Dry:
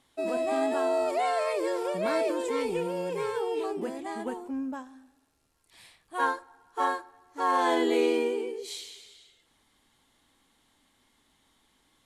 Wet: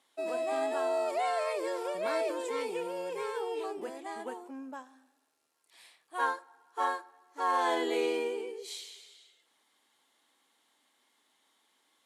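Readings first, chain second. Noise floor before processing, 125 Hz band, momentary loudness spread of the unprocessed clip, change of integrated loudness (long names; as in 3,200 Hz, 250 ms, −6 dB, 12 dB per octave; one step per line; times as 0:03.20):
−69 dBFS, below −15 dB, 14 LU, −4.0 dB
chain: high-pass filter 400 Hz 12 dB per octave
level −3 dB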